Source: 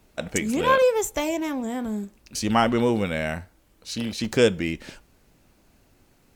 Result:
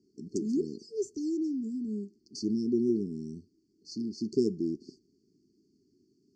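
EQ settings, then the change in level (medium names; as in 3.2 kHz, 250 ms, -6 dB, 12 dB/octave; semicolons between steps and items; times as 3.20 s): band-pass 270–7300 Hz; brick-wall FIR band-stop 430–4300 Hz; distance through air 170 m; 0.0 dB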